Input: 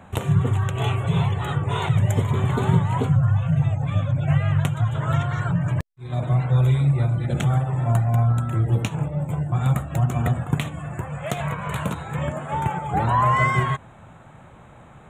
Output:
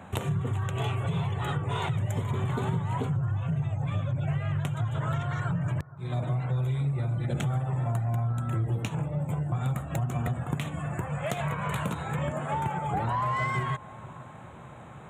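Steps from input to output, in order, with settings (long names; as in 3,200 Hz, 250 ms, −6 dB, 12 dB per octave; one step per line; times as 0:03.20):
high-pass filter 73 Hz
in parallel at −3.5 dB: soft clipping −19 dBFS, distortion −12 dB
on the sum: downward compressor 4 to 1, threshold −23 dBFS, peak gain reduction 10.5 dB
bucket-brigade delay 468 ms, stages 4,096, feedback 59%, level −20 dB
level −4 dB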